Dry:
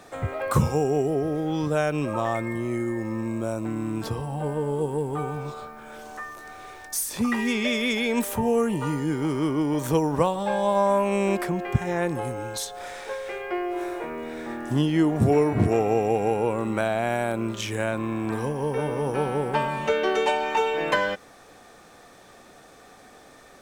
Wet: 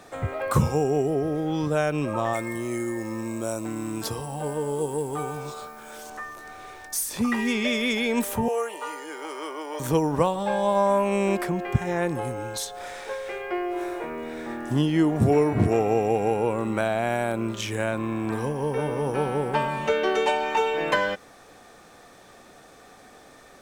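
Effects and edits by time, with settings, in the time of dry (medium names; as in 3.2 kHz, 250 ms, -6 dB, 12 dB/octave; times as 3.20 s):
2.33–6.10 s: tone controls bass -5 dB, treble +10 dB
8.48–9.80 s: high-pass 490 Hz 24 dB/octave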